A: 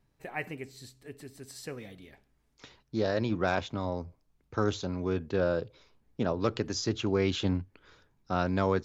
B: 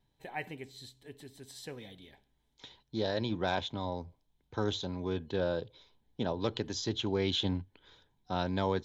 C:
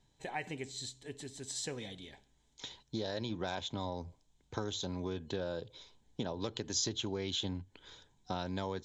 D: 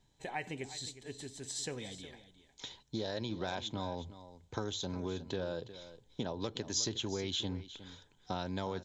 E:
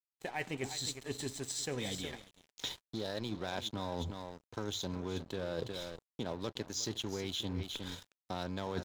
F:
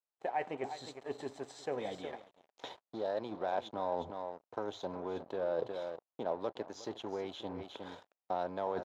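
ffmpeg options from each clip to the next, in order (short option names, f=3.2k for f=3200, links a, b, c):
-af "superequalizer=9b=1.58:10b=0.562:13b=2.82,volume=-4dB"
-af "acompressor=threshold=-38dB:ratio=6,lowpass=f=7.2k:t=q:w=3.8,volume=3.5dB"
-af "aecho=1:1:361:0.188"
-af "areverse,acompressor=threshold=-44dB:ratio=10,areverse,aeval=exprs='sgn(val(0))*max(abs(val(0))-0.00106,0)':c=same,volume=11dB"
-af "bandpass=f=690:t=q:w=1.7:csg=0,volume=8dB"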